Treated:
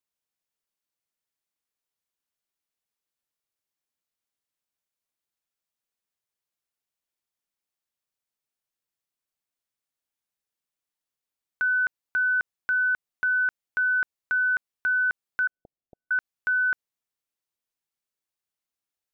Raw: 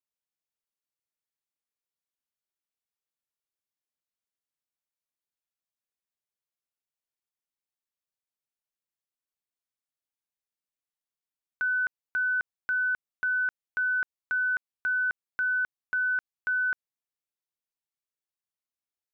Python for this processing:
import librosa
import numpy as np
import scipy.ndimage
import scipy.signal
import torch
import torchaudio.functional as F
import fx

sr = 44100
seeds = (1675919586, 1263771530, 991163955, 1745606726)

y = fx.steep_lowpass(x, sr, hz=730.0, slope=72, at=(15.47, 16.11))
y = F.gain(torch.from_numpy(y), 3.5).numpy()